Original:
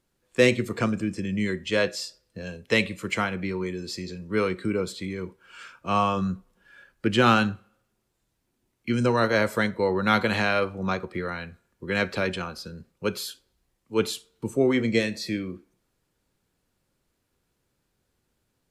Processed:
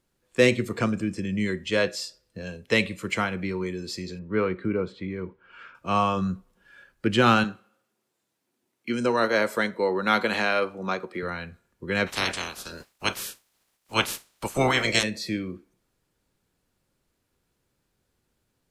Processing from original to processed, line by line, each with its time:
4.19–5.75 s: low-pass 2.2 kHz
7.44–11.23 s: high-pass 230 Hz
12.06–15.02 s: spectral peaks clipped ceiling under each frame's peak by 29 dB

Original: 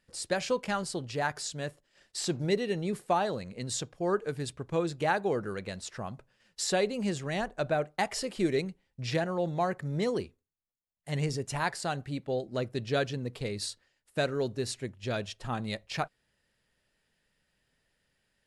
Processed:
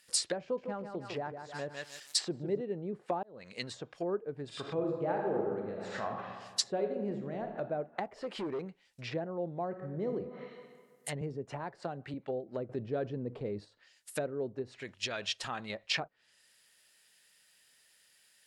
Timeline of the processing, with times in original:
0.42–2.61 s: bit-crushed delay 154 ms, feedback 35%, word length 9-bit, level -7 dB
3.23–3.65 s: fade in linear
4.46–6.13 s: reverb throw, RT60 1.5 s, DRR -1 dB
6.70–7.60 s: reverb throw, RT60 1.2 s, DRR 4 dB
8.16–8.62 s: overload inside the chain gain 29.5 dB
9.66–10.14 s: reverb throw, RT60 1.7 s, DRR 4.5 dB
11.21–12.14 s: three bands compressed up and down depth 40%
12.69–13.65 s: level flattener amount 50%
14.62–15.70 s: compression 10:1, threshold -33 dBFS
whole clip: low-pass that closes with the level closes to 450 Hz, closed at -29 dBFS; tilt EQ +4.5 dB/octave; trim +3.5 dB

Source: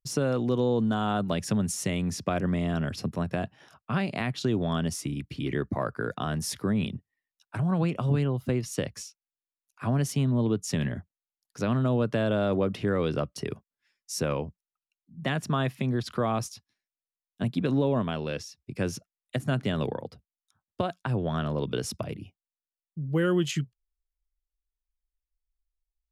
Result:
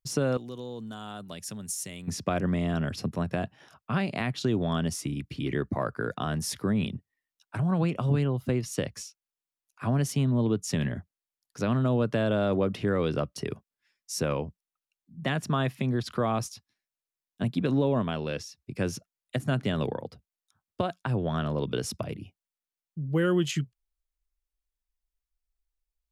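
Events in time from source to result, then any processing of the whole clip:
0.37–2.08 s: pre-emphasis filter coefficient 0.8

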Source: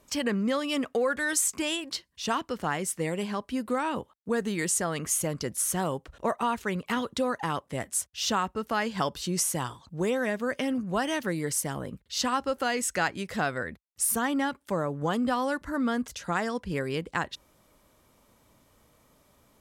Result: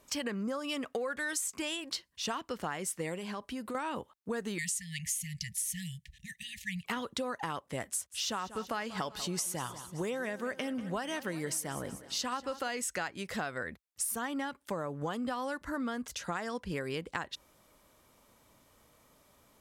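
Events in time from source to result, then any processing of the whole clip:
0.44–0.65 s: time-frequency box 1.7–4.6 kHz -12 dB
3.16–3.75 s: compression, threshold -32 dBFS
4.58–6.85 s: brick-wall FIR band-stop 200–1700 Hz
7.91–12.69 s: feedback delay 190 ms, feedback 56%, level -17 dB
whole clip: bass shelf 410 Hz -4.5 dB; compression, threshold -32 dBFS

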